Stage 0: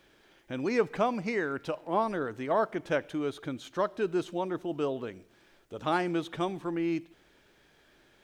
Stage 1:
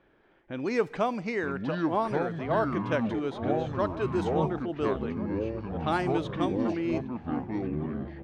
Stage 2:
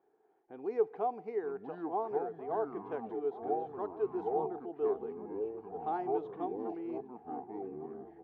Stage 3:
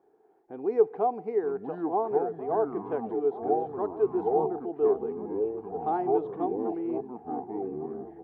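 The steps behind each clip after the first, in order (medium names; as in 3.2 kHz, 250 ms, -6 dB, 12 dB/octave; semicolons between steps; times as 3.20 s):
level-controlled noise filter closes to 1.6 kHz, open at -23 dBFS; ever faster or slower copies 722 ms, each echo -6 st, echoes 3; echo from a far wall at 240 m, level -15 dB
two resonant band-passes 570 Hz, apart 0.79 oct
tilt shelf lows +5 dB, about 1.4 kHz; trim +4 dB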